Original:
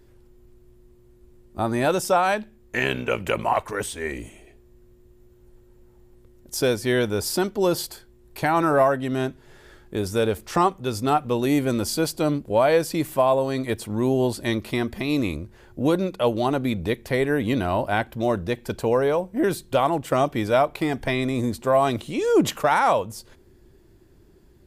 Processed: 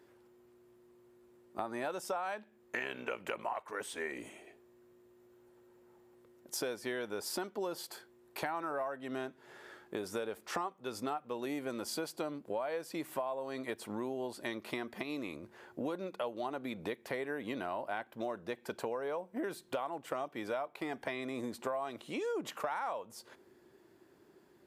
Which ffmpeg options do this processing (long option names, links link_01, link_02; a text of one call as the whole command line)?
ffmpeg -i in.wav -filter_complex "[0:a]asplit=3[link_01][link_02][link_03];[link_01]atrim=end=15.032[link_04];[link_02]atrim=start=15.028:end=15.432,asetpts=PTS-STARTPTS,volume=-5dB[link_05];[link_03]atrim=start=15.428[link_06];[link_04][link_05]acrossfade=duration=0.004:curve1=hsin:curve2=hsin[link_07];[link_07][link_06]acrossfade=duration=0.004:curve1=hsin:curve2=hsin,highpass=210,equalizer=frequency=1100:width_type=o:width=2.7:gain=7.5,acompressor=threshold=-28dB:ratio=6,volume=-7.5dB" out.wav